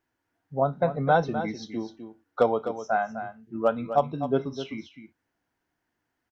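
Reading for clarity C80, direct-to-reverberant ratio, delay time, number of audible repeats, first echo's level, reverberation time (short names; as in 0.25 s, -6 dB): none, none, 0.254 s, 1, -10.5 dB, none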